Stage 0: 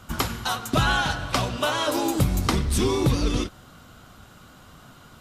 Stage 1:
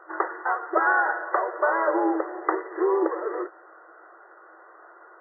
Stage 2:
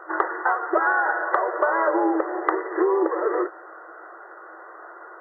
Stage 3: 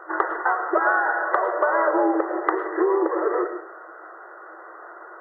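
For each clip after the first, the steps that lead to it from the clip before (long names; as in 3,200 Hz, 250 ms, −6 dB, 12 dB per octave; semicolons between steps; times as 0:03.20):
brick-wall band-pass 320–2,000 Hz; level +3 dB
downward compressor, threshold −25 dBFS, peak gain reduction 8.5 dB; level +7.5 dB
convolution reverb RT60 0.45 s, pre-delay 70 ms, DRR 9 dB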